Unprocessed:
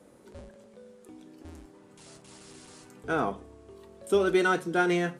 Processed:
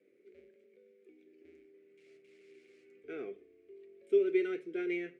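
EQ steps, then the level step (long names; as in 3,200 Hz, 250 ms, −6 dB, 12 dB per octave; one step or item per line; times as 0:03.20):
pair of resonant band-passes 940 Hz, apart 2.5 octaves
−2.0 dB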